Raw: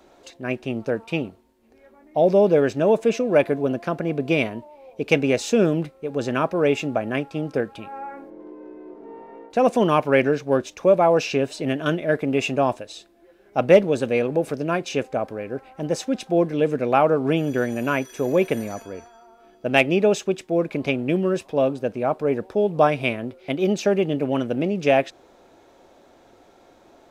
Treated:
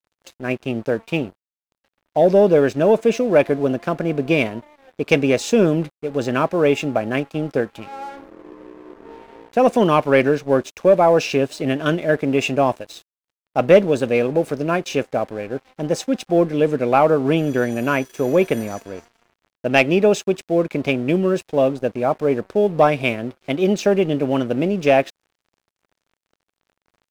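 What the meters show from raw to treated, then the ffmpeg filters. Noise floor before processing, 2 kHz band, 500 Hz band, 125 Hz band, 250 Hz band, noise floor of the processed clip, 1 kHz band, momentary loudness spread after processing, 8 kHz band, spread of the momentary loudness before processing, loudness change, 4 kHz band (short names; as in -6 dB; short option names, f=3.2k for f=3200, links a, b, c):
-54 dBFS, +2.5 dB, +3.0 dB, +3.0 dB, +3.0 dB, under -85 dBFS, +3.0 dB, 11 LU, +2.5 dB, 16 LU, +3.0 dB, +2.5 dB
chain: -filter_complex "[0:a]asplit=2[a][b];[b]acontrast=56,volume=2dB[c];[a][c]amix=inputs=2:normalize=0,aeval=exprs='sgn(val(0))*max(abs(val(0))-0.0188,0)':c=same,volume=-7dB"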